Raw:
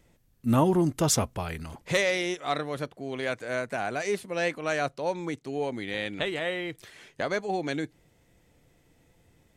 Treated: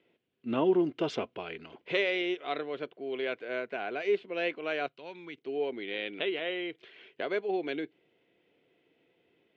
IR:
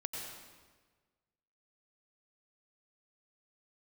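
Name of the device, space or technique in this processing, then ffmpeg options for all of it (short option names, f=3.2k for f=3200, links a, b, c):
phone earpiece: -filter_complex "[0:a]asettb=1/sr,asplit=3[a][b][c];[a]atrim=end=4.864[d];[b]atrim=start=4.86:end=5.38,asetpts=PTS-STARTPTS,afade=t=in:d=0.004:c=qsin,afade=t=out:st=0.516:d=0.004:c=qsin,equalizer=f=490:w=0.67:g=-13[e];[c]atrim=start=5.376[f];[d][e]acrossfade=d=0.004:c1=hsin:c2=qsin[g];[g][f]acrossfade=d=0.004:c1=qsin:c2=hsin,highpass=380,equalizer=f=390:t=q:w=4:g=6,equalizer=f=570:t=q:w=4:g=-5,equalizer=f=850:t=q:w=4:g=-9,equalizer=f=1.2k:t=q:w=4:g=-8,equalizer=f=1.8k:t=q:w=4:g=-7,equalizer=f=3k:t=q:w=4:g=4,lowpass=f=3.1k:w=0.5412,lowpass=f=3.1k:w=1.3066"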